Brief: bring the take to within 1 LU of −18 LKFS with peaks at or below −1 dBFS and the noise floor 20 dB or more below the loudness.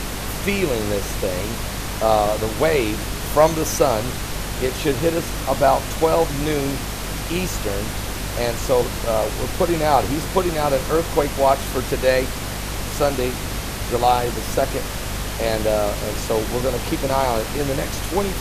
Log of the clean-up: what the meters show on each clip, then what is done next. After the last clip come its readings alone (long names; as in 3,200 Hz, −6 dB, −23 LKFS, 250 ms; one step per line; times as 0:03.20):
mains hum 50 Hz; hum harmonics up to 250 Hz; level of the hum −29 dBFS; background noise floor −28 dBFS; target noise floor −42 dBFS; integrated loudness −21.5 LKFS; sample peak −2.5 dBFS; target loudness −18.0 LKFS
→ mains-hum notches 50/100/150/200/250 Hz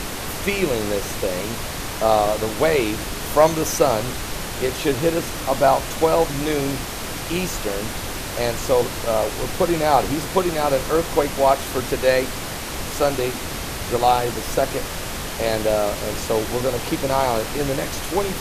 mains hum none found; background noise floor −29 dBFS; target noise floor −42 dBFS
→ noise reduction from a noise print 13 dB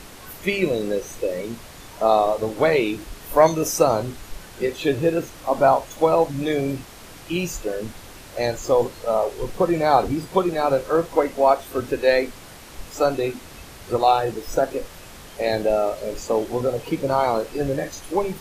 background noise floor −42 dBFS; integrated loudness −22.0 LKFS; sample peak −3.0 dBFS; target loudness −18.0 LKFS
→ level +4 dB
brickwall limiter −1 dBFS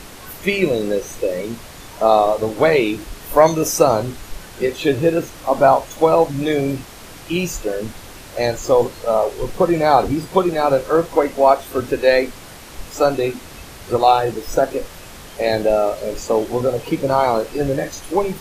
integrated loudness −18.0 LKFS; sample peak −1.0 dBFS; background noise floor −38 dBFS